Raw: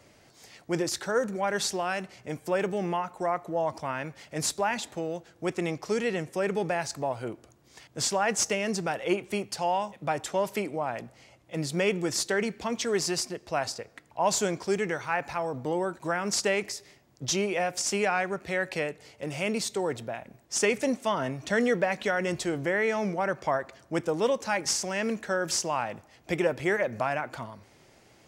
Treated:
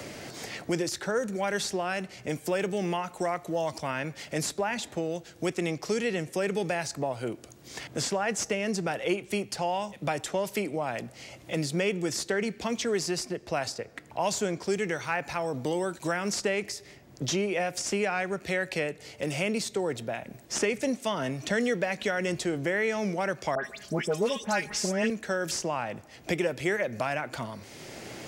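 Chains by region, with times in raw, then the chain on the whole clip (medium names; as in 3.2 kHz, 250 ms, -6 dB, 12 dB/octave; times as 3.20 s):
23.55–25.10 s: comb 4.8 ms, depth 72% + phase dispersion highs, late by 94 ms, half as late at 2.2 kHz
whole clip: peaking EQ 1 kHz -4.5 dB 1.1 oct; three bands compressed up and down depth 70%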